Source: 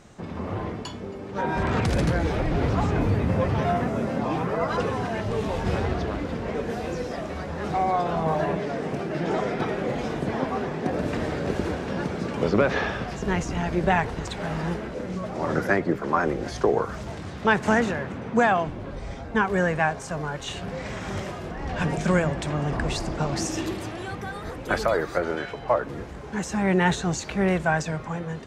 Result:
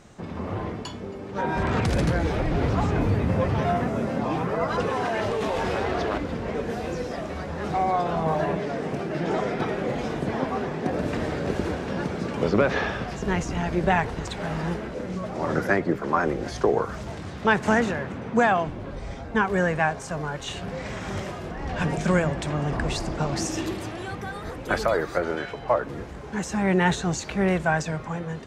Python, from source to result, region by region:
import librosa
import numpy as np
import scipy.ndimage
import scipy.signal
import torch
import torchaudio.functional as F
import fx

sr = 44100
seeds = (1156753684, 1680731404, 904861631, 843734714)

y = fx.chain(x, sr, fx.bass_treble(bass_db=-11, treble_db=-2),
    fx.env_flatten(amount_pct=100), at=(4.88, 6.18))